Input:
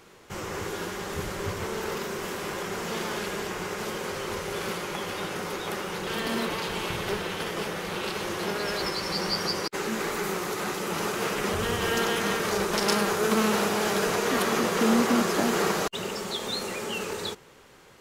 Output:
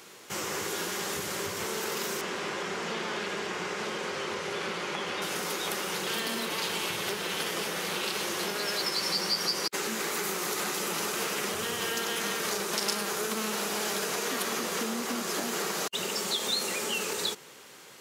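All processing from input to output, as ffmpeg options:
-filter_complex "[0:a]asettb=1/sr,asplit=3[s0][s1][s2];[s0]atrim=end=2.214[s3];[s1]atrim=start=2.21:end=5.22,asetpts=PTS-STARTPTS,afade=t=in:d=0.004:c=qsin,afade=t=out:st=3.006:d=0.004:c=qsin,lowpass=6800,acrossover=split=3400[s4][s5];[s5]acompressor=threshold=0.00355:ratio=4:attack=1:release=60[s6];[s4][s6]amix=inputs=2:normalize=0[s7];[s2]atrim=start=5.216[s8];[s3][s7]acrossfade=d=0.004:c1=hsin:c2=qsin[s9];[s9][s8]acrossfade=d=0.004:c1=qsin:c2=hsin,acompressor=threshold=0.0282:ratio=6,highpass=160,highshelf=f=2600:g=10"

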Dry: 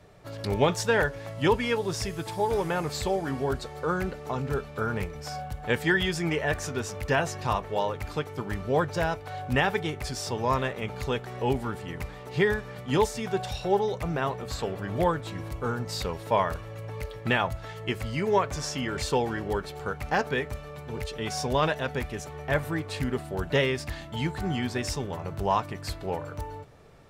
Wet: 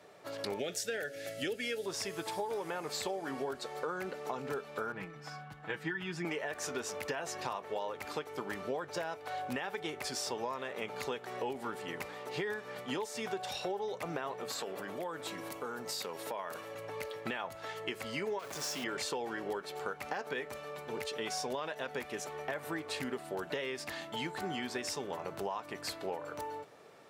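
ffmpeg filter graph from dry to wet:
-filter_complex "[0:a]asettb=1/sr,asplit=3[s0][s1][s2];[s0]atrim=end=0.594[s3];[s1]atrim=start=0.59:end=1.86,asetpts=PTS-STARTPTS,afade=t=in:d=0.004:c=qsin,afade=t=out:st=1.266:d=0.004:c=qsin,asuperstop=centerf=1000:order=4:qfactor=1.3,highshelf=f=5500:g=9[s4];[s2]atrim=start=1.856[s5];[s3][s4]acrossfade=d=0.004:c1=hsin:c2=qsin[s6];[s6][s5]acrossfade=d=0.004:c1=qsin:c2=hsin,asettb=1/sr,asplit=3[s7][s8][s9];[s7]atrim=end=4.924[s10];[s8]atrim=start=4.92:end=6.25,asetpts=PTS-STARTPTS,afade=t=in:d=0.004:c=qsin,afade=t=out:st=1.326:d=0.004:c=qsin,lowpass=f=1100:p=1,equalizer=f=510:t=o:w=1.1:g=-12.5,aecho=1:1:6.2:0.84,atrim=end_sample=58653[s11];[s9]atrim=start=6.246[s12];[s10][s11]acrossfade=d=0.004:c1=hsin:c2=qsin[s13];[s13][s12]acrossfade=d=0.004:c1=qsin:c2=hsin,asettb=1/sr,asplit=3[s14][s15][s16];[s14]atrim=end=14.494[s17];[s15]atrim=start=14.49:end=16.75,asetpts=PTS-STARTPTS,afade=t=in:d=0.004:c=qsin,afade=t=out:st=2.256:d=0.004:c=qsin,highpass=120,highshelf=f=8800:g=8.5,acompressor=threshold=0.0224:ratio=6:attack=3.2:release=140:knee=1:detection=peak[s18];[s16]atrim=start=16.746[s19];[s17][s18]acrossfade=d=0.004:c1=hsin:c2=qsin[s20];[s20][s19]acrossfade=d=0.004:c1=qsin:c2=hsin,asettb=1/sr,asplit=3[s21][s22][s23];[s21]atrim=end=18.394[s24];[s22]atrim=start=18.39:end=18.84,asetpts=PTS-STARTPTS,afade=t=in:d=0.004:c=qsin,afade=t=out:st=0.446:d=0.004:c=qsin,asoftclip=type=hard:threshold=0.0316,acrusher=bits=2:mode=log:mix=0:aa=0.000001[s25];[s23]atrim=start=18.836[s26];[s24][s25]acrossfade=d=0.004:c1=hsin:c2=qsin[s27];[s27][s26]acrossfade=d=0.004:c1=qsin:c2=hsin,highpass=310,alimiter=limit=0.119:level=0:latency=1:release=96,acompressor=threshold=0.02:ratio=6"

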